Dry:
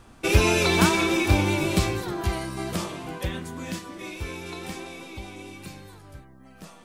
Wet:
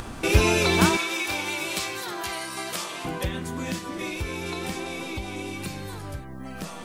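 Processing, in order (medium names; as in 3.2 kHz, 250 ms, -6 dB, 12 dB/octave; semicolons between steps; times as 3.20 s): 0.97–3.05 s: high-pass 1.4 kHz 6 dB/octave; upward compressor, threshold -24 dBFS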